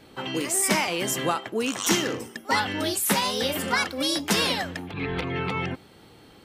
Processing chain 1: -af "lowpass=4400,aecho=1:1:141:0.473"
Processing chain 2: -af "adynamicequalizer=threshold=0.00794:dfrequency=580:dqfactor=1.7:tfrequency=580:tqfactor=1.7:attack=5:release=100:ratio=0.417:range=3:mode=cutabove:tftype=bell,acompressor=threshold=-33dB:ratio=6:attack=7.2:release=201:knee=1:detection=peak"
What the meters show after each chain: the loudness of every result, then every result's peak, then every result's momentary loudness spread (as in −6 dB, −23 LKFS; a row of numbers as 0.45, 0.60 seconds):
−26.0, −35.5 LKFS; −10.0, −19.5 dBFS; 7, 5 LU